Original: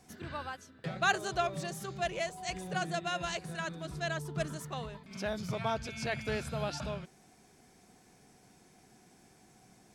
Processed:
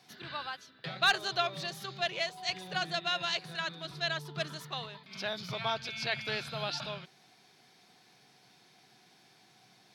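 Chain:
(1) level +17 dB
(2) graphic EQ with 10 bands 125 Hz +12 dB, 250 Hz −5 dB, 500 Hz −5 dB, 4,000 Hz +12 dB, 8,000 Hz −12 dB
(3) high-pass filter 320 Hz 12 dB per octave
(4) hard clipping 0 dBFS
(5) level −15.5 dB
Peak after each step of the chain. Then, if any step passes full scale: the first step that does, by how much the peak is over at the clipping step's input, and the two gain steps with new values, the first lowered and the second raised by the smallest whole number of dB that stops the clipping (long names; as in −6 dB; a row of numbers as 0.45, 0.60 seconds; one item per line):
+2.0, +4.5, +5.0, 0.0, −15.5 dBFS
step 1, 5.0 dB
step 1 +12 dB, step 5 −10.5 dB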